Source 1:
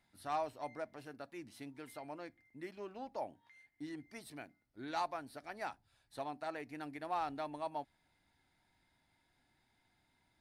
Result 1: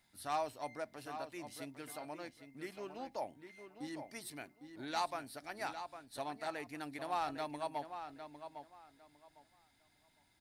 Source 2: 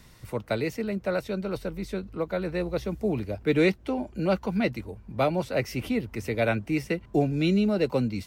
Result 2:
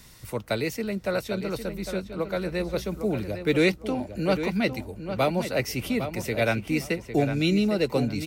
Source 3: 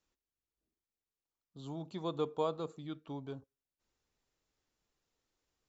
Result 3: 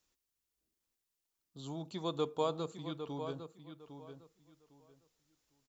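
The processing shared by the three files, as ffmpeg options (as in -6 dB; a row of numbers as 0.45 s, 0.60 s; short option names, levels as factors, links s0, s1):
-filter_complex "[0:a]highshelf=f=3400:g=9,asplit=2[s0][s1];[s1]adelay=805,lowpass=f=3800:p=1,volume=0.355,asplit=2[s2][s3];[s3]adelay=805,lowpass=f=3800:p=1,volume=0.22,asplit=2[s4][s5];[s5]adelay=805,lowpass=f=3800:p=1,volume=0.22[s6];[s2][s4][s6]amix=inputs=3:normalize=0[s7];[s0][s7]amix=inputs=2:normalize=0"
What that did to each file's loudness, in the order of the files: +1.0 LU, +1.0 LU, +0.5 LU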